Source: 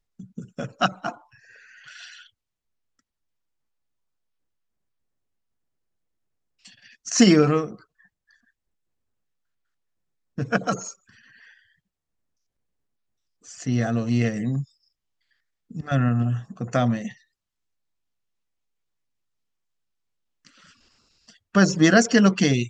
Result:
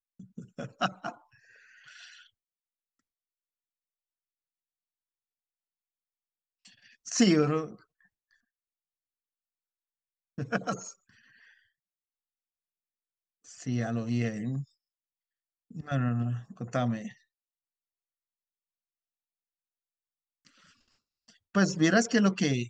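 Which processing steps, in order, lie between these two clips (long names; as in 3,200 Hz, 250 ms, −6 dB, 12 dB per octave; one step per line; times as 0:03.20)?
noise gate with hold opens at −49 dBFS
level −7.5 dB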